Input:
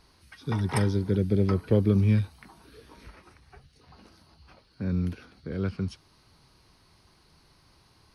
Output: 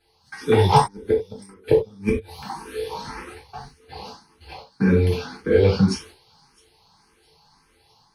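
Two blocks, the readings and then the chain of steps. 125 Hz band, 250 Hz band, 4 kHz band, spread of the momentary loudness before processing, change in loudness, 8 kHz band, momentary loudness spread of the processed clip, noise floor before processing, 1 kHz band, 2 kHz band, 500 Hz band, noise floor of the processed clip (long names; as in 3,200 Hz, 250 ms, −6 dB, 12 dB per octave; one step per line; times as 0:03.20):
+2.0 dB, +4.0 dB, +12.5 dB, 14 LU, +5.5 dB, can't be measured, 22 LU, −62 dBFS, +17.5 dB, +10.0 dB, +11.5 dB, −61 dBFS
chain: noise gate −54 dBFS, range −15 dB
low-shelf EQ 270 Hz −9.5 dB
notch filter 640 Hz, Q 13
gate with flip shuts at −20 dBFS, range −38 dB
in parallel at −11.5 dB: hard clipping −37 dBFS, distortion −6 dB
on the sum: automatic gain control gain up to 5 dB
hollow resonant body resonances 450/820 Hz, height 14 dB, ringing for 75 ms
on a send: delay with a high-pass on its return 660 ms, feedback 45%, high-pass 4,400 Hz, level −20.5 dB
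on the sum: reverb whose tail is shaped and stops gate 120 ms falling, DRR −4.5 dB
frequency shifter mixed with the dry sound +1.8 Hz
level +7 dB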